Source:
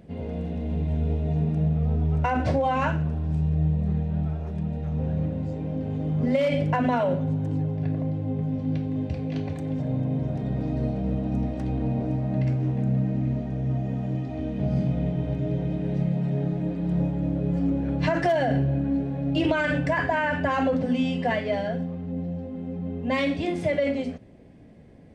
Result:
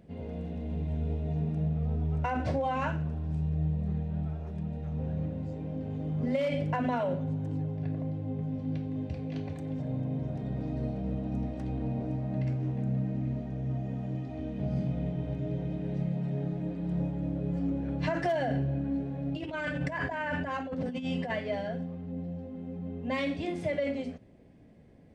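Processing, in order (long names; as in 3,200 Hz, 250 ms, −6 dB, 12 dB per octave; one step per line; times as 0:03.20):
0:19.28–0:21.30: compressor whose output falls as the input rises −26 dBFS, ratio −0.5
level −6.5 dB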